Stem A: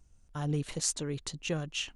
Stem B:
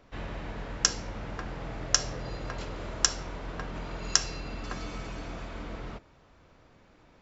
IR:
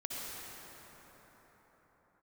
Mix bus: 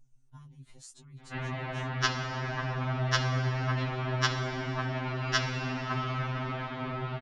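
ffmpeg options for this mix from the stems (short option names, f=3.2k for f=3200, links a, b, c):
-filter_complex "[0:a]lowshelf=f=350:g=9,acompressor=threshold=-39dB:ratio=3,volume=-7.5dB[a];[1:a]lowpass=f=3.7k:w=0.5412,lowpass=f=3.7k:w=1.3066,acontrast=56,adelay=1200,volume=-0.5dB,asplit=2[b][c];[c]volume=-5.5dB[d];[2:a]atrim=start_sample=2205[e];[d][e]afir=irnorm=-1:irlink=0[f];[a][b][f]amix=inputs=3:normalize=0,equalizer=f=480:w=5.7:g=-13.5,afftfilt=real='re*2.45*eq(mod(b,6),0)':imag='im*2.45*eq(mod(b,6),0)':win_size=2048:overlap=0.75"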